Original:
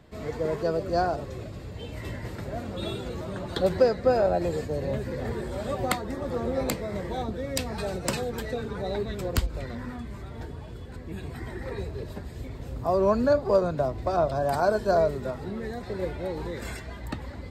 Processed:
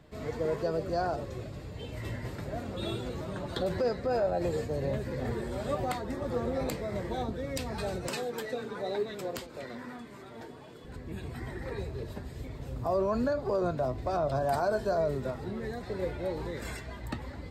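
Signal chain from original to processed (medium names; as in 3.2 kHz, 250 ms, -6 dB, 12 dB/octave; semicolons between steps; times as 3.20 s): 8.09–10.85 s: high-pass 240 Hz 12 dB/octave; peak limiter -18.5 dBFS, peak gain reduction 9.5 dB; flange 1.2 Hz, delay 6.2 ms, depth 2.8 ms, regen +74%; trim +2 dB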